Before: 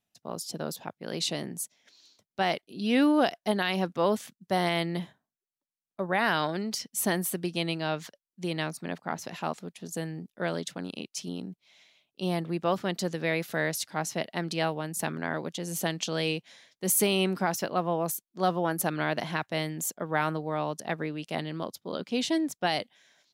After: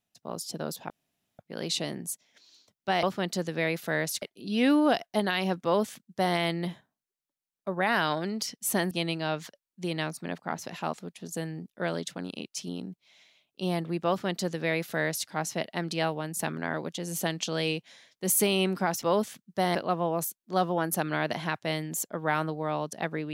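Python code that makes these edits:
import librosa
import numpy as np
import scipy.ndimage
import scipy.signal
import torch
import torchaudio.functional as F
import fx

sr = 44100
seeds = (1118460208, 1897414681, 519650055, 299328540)

y = fx.edit(x, sr, fx.insert_room_tone(at_s=0.9, length_s=0.49),
    fx.duplicate(start_s=3.95, length_s=0.73, to_s=17.62),
    fx.cut(start_s=7.23, length_s=0.28),
    fx.duplicate(start_s=12.69, length_s=1.19, to_s=2.54), tone=tone)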